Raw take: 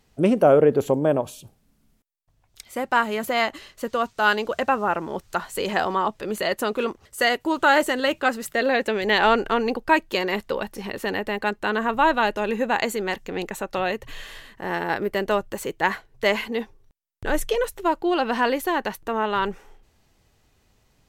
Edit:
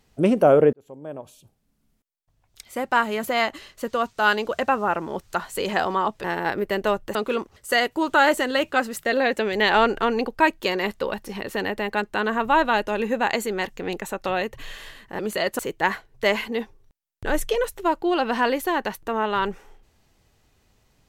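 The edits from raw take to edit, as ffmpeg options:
ffmpeg -i in.wav -filter_complex "[0:a]asplit=6[link_01][link_02][link_03][link_04][link_05][link_06];[link_01]atrim=end=0.73,asetpts=PTS-STARTPTS,afade=type=out:start_time=0.726:duration=0.004:curve=hsin[link_07];[link_02]atrim=start=0.73:end=6.242,asetpts=PTS-STARTPTS,afade=type=in:duration=2.07[link_08];[link_03]atrim=start=14.678:end=15.592[link_09];[link_04]atrim=start=6.638:end=14.682[link_10];[link_05]atrim=start=6.238:end=6.642[link_11];[link_06]atrim=start=15.588[link_12];[link_07][link_08]concat=n=2:v=0:a=1[link_13];[link_13][link_09]acrossfade=duration=0.004:curve1=hsin:curve2=hsin[link_14];[link_14][link_10]acrossfade=duration=0.004:curve1=hsin:curve2=hsin[link_15];[link_15][link_11]acrossfade=duration=0.004:curve1=hsin:curve2=hsin[link_16];[link_16][link_12]acrossfade=duration=0.004:curve1=hsin:curve2=hsin" out.wav

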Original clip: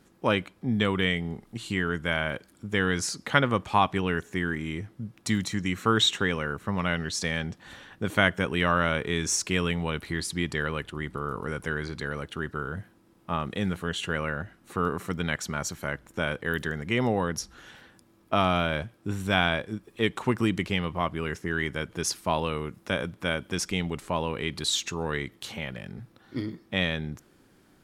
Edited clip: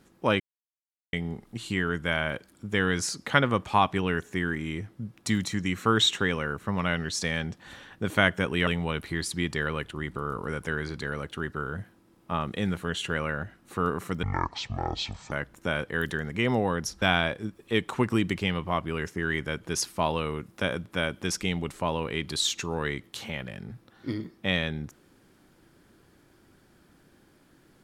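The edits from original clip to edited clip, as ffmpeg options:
ffmpeg -i in.wav -filter_complex "[0:a]asplit=7[link_01][link_02][link_03][link_04][link_05][link_06][link_07];[link_01]atrim=end=0.4,asetpts=PTS-STARTPTS,afade=type=out:start_time=0.396:duration=0.004:curve=hsin[link_08];[link_02]atrim=start=0.4:end=1.13,asetpts=PTS-STARTPTS,volume=0[link_09];[link_03]atrim=start=1.13:end=8.672,asetpts=PTS-STARTPTS,afade=type=in:duration=0.004:curve=hsin[link_10];[link_04]atrim=start=9.658:end=15.224[link_11];[link_05]atrim=start=15.22:end=15.84,asetpts=PTS-STARTPTS,asetrate=25137,aresample=44100,atrim=end_sample=47968,asetpts=PTS-STARTPTS[link_12];[link_06]atrim=start=15.836:end=17.542[link_13];[link_07]atrim=start=19.298[link_14];[link_08][link_09][link_10]concat=n=3:v=0:a=1[link_15];[link_15][link_11]acrossfade=duration=0.004:curve1=hsin:curve2=hsin[link_16];[link_16][link_12]acrossfade=duration=0.004:curve1=hsin:curve2=hsin[link_17];[link_17][link_13]acrossfade=duration=0.004:curve1=hsin:curve2=hsin[link_18];[link_18][link_14]acrossfade=duration=0.004:curve1=hsin:curve2=hsin" out.wav

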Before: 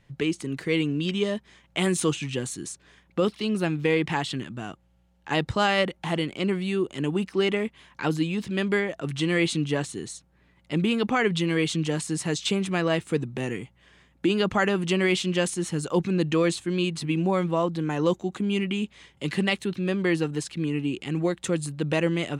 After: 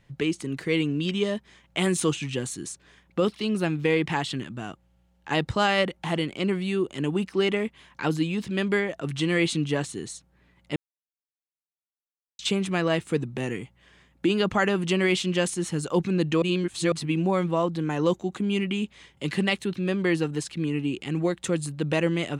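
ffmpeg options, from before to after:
ffmpeg -i in.wav -filter_complex "[0:a]asplit=5[link_01][link_02][link_03][link_04][link_05];[link_01]atrim=end=10.76,asetpts=PTS-STARTPTS,afade=type=out:start_time=10.756:duration=0.004:curve=hsin[link_06];[link_02]atrim=start=10.76:end=12.39,asetpts=PTS-STARTPTS,volume=0[link_07];[link_03]atrim=start=12.39:end=16.422,asetpts=PTS-STARTPTS,afade=type=in:duration=0.004:curve=hsin[link_08];[link_04]atrim=start=16.418:end=16.922,asetpts=PTS-STARTPTS,areverse[link_09];[link_05]atrim=start=16.918[link_10];[link_06][link_07][link_08]concat=n=3:v=0:a=1[link_11];[link_11][link_09]acrossfade=duration=0.004:curve1=hsin:curve2=hsin[link_12];[link_12][link_10]acrossfade=duration=0.004:curve1=hsin:curve2=hsin" out.wav

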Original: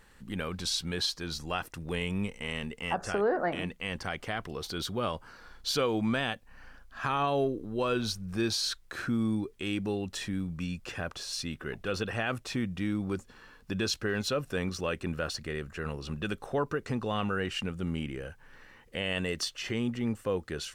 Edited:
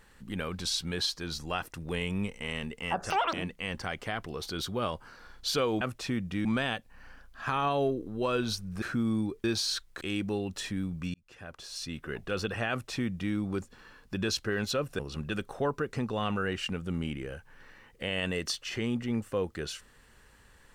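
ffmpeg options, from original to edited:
ffmpeg -i in.wav -filter_complex "[0:a]asplit=10[link_01][link_02][link_03][link_04][link_05][link_06][link_07][link_08][link_09][link_10];[link_01]atrim=end=3.104[link_11];[link_02]atrim=start=3.1:end=3.54,asetpts=PTS-STARTPTS,asetrate=84231,aresample=44100,atrim=end_sample=10159,asetpts=PTS-STARTPTS[link_12];[link_03]atrim=start=3.536:end=6.022[link_13];[link_04]atrim=start=12.268:end=12.912[link_14];[link_05]atrim=start=6.018:end=8.392[link_15];[link_06]atrim=start=8.958:end=9.582[link_16];[link_07]atrim=start=8.388:end=8.962[link_17];[link_08]atrim=start=9.578:end=10.71,asetpts=PTS-STARTPTS,afade=type=out:start_time=1.128:duration=0.004:curve=hsin[link_18];[link_09]atrim=start=10.71:end=14.562,asetpts=PTS-STARTPTS,afade=type=in:duration=0.96[link_19];[link_10]atrim=start=15.918[link_20];[link_11][link_12]acrossfade=duration=0.004:curve1=hsin:curve2=hsin[link_21];[link_21][link_13]acrossfade=duration=0.004:curve1=hsin:curve2=hsin[link_22];[link_22][link_14]acrossfade=duration=0.004:curve1=hsin:curve2=hsin[link_23];[link_23][link_15]acrossfade=duration=0.004:curve1=hsin:curve2=hsin[link_24];[link_24][link_16]acrossfade=duration=0.004:curve1=hsin:curve2=hsin[link_25];[link_25][link_17]acrossfade=duration=0.004:curve1=hsin:curve2=hsin[link_26];[link_18][link_19]concat=n=2:v=0:a=1[link_27];[link_26][link_27]acrossfade=duration=0.004:curve1=hsin:curve2=hsin[link_28];[link_28][link_20]acrossfade=duration=0.004:curve1=hsin:curve2=hsin" out.wav

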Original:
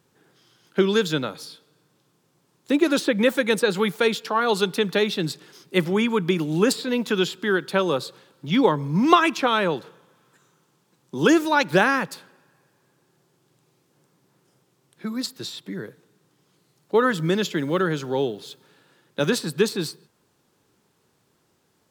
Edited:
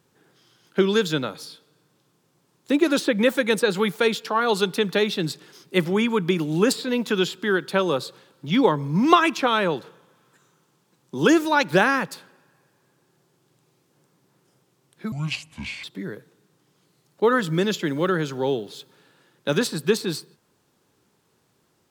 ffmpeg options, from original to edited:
ffmpeg -i in.wav -filter_complex "[0:a]asplit=3[link_01][link_02][link_03];[link_01]atrim=end=15.124[link_04];[link_02]atrim=start=15.12:end=15.55,asetpts=PTS-STARTPTS,asetrate=26460,aresample=44100[link_05];[link_03]atrim=start=15.546[link_06];[link_04][link_05]acrossfade=duration=0.004:curve1=hsin:curve2=hsin[link_07];[link_07][link_06]acrossfade=duration=0.004:curve1=hsin:curve2=hsin" out.wav

